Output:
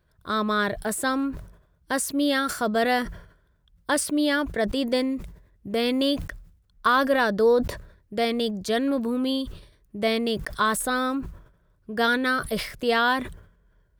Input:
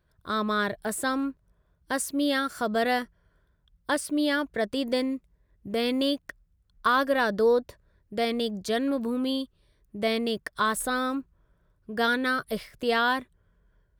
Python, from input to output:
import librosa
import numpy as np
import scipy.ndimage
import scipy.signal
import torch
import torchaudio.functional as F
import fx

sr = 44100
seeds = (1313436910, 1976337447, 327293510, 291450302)

y = fx.sustainer(x, sr, db_per_s=94.0)
y = y * librosa.db_to_amplitude(2.5)